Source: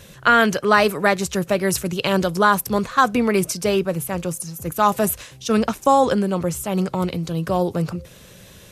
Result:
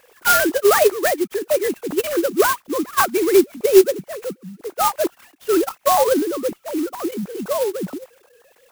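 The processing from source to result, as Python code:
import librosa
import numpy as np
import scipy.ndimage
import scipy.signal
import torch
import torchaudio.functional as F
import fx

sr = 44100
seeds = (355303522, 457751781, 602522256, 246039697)

y = fx.sine_speech(x, sr)
y = fx.peak_eq(y, sr, hz=360.0, db=6.0, octaves=0.36)
y = fx.clock_jitter(y, sr, seeds[0], jitter_ms=0.065)
y = y * 10.0 ** (-1.0 / 20.0)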